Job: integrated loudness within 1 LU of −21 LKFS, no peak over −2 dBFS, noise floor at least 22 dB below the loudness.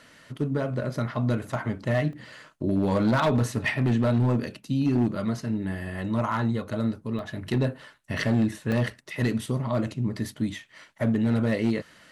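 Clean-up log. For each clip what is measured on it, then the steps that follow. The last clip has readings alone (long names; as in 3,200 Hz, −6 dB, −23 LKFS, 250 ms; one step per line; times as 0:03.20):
share of clipped samples 1.4%; peaks flattened at −17.0 dBFS; number of dropouts 3; longest dropout 1.6 ms; integrated loudness −27.0 LKFS; sample peak −17.0 dBFS; target loudness −21.0 LKFS
→ clipped peaks rebuilt −17 dBFS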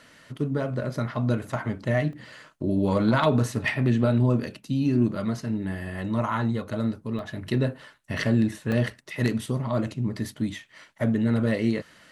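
share of clipped samples 0.0%; number of dropouts 3; longest dropout 1.6 ms
→ repair the gap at 0:02.13/0:07.19/0:08.72, 1.6 ms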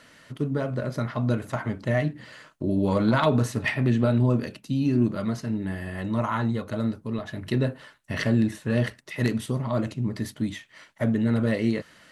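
number of dropouts 0; integrated loudness −26.5 LKFS; sample peak −9.0 dBFS; target loudness −21.0 LKFS
→ level +5.5 dB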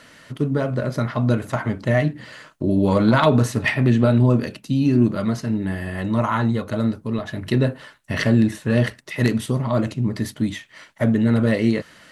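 integrated loudness −21.0 LKFS; sample peak −3.5 dBFS; background noise floor −51 dBFS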